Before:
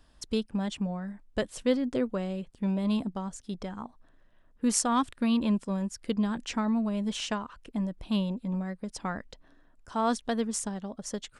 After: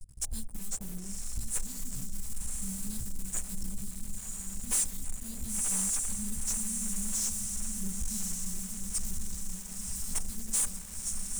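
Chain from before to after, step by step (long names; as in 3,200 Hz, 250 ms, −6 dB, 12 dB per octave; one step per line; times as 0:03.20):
fade-out on the ending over 0.70 s
in parallel at −11.5 dB: centre clipping without the shift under −29.5 dBFS
on the sum: multi-voice chorus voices 2, 0.45 Hz, delay 15 ms, depth 2.3 ms
brickwall limiter −23.5 dBFS, peak gain reduction 10 dB
inverse Chebyshev band-stop filter 360–2,200 Hz, stop band 70 dB
parametric band 77 Hz −9.5 dB 0.78 octaves
on a send: feedback delay with all-pass diffusion 1,034 ms, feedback 60%, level −4.5 dB
on the sum: leveller curve on the samples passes 5
hum removal 46.25 Hz, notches 18
level +3 dB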